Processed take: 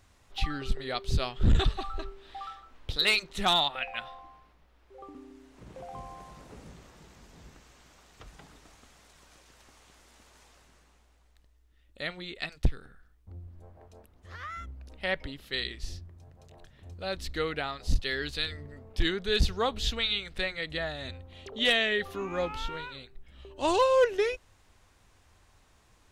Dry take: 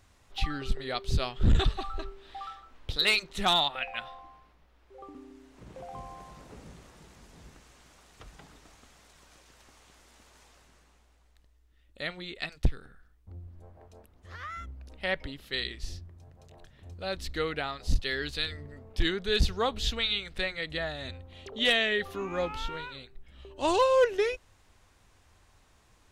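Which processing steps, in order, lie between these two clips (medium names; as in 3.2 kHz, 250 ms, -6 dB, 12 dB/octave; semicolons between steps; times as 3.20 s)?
6.70–8.27 s: peaking EQ 9.8 kHz -7.5 dB 0.24 oct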